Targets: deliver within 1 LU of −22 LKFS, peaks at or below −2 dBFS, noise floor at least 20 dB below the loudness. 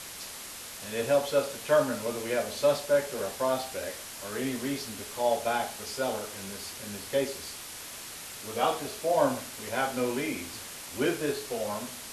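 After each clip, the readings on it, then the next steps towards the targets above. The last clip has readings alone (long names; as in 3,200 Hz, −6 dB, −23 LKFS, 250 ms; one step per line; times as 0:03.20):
background noise floor −43 dBFS; target noise floor −51 dBFS; integrated loudness −31.0 LKFS; sample peak −11.5 dBFS; target loudness −22.0 LKFS
→ broadband denoise 8 dB, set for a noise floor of −43 dBFS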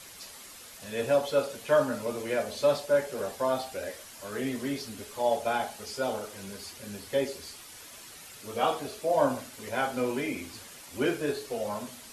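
background noise floor −48 dBFS; target noise floor −51 dBFS
→ broadband denoise 6 dB, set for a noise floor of −48 dBFS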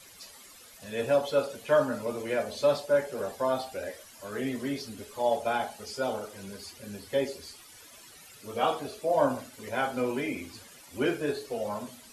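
background noise floor −52 dBFS; integrated loudness −30.5 LKFS; sample peak −12.0 dBFS; target loudness −22.0 LKFS
→ level +8.5 dB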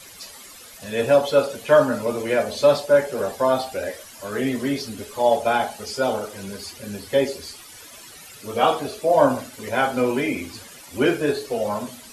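integrated loudness −22.0 LKFS; sample peak −3.5 dBFS; background noise floor −43 dBFS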